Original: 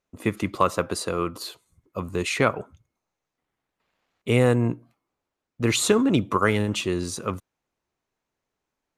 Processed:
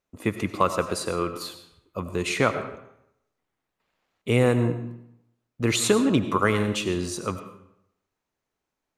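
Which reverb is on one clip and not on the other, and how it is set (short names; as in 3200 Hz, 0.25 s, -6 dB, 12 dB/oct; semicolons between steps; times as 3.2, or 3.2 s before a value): digital reverb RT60 0.77 s, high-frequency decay 0.8×, pre-delay 55 ms, DRR 9.5 dB; gain -1 dB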